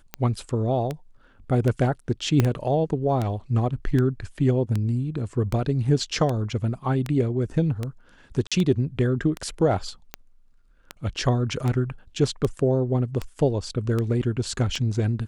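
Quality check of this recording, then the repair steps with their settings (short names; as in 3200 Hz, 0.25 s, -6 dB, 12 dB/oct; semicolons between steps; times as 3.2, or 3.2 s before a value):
tick 78 rpm -14 dBFS
2.4 pop -7 dBFS
8.47–8.52 gap 46 ms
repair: de-click; interpolate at 8.47, 46 ms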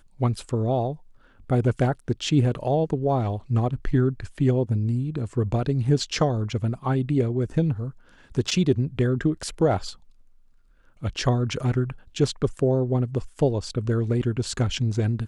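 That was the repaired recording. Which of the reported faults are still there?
2.4 pop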